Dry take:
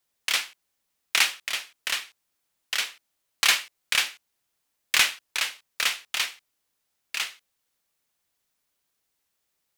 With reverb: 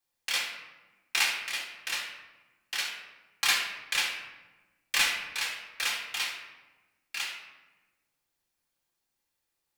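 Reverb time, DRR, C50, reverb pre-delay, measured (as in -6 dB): 1.2 s, -2.0 dB, 4.0 dB, 3 ms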